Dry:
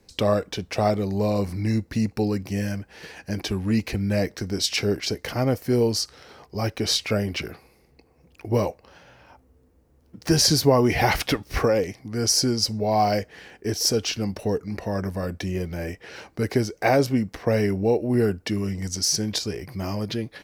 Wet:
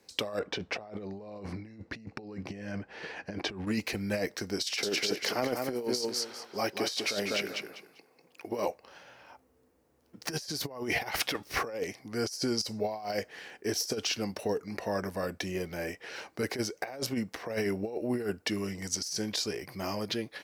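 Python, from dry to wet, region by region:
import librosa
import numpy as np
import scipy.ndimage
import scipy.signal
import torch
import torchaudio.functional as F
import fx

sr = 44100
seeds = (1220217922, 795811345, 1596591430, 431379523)

y = fx.chain(x, sr, fx.spacing_loss(db_at_10k=22),
    fx.over_compress(threshold_db=-30.0, ratio=-0.5), at=(0.39, 3.67))
y = fx.chain(y, sr, fx.highpass(hz=180.0, slope=12),
    fx.echo_feedback(ms=197, feedback_pct=24, wet_db=-6), at=(4.63, 8.67))
y = fx.highpass(y, sr, hz=450.0, slope=6)
y = fx.over_compress(y, sr, threshold_db=-27.0, ratio=-0.5)
y = y * librosa.db_to_amplitude(-3.5)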